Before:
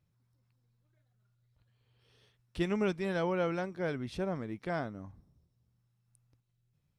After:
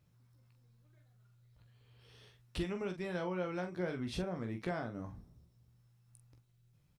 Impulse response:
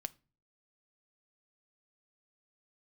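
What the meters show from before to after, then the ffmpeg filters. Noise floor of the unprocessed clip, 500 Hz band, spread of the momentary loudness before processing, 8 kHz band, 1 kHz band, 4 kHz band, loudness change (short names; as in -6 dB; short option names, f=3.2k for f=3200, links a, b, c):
-77 dBFS, -5.5 dB, 12 LU, n/a, -5.5 dB, -1.5 dB, -5.0 dB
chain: -af "acompressor=threshold=-40dB:ratio=12,aecho=1:1:17|44:0.376|0.398,volume=5dB"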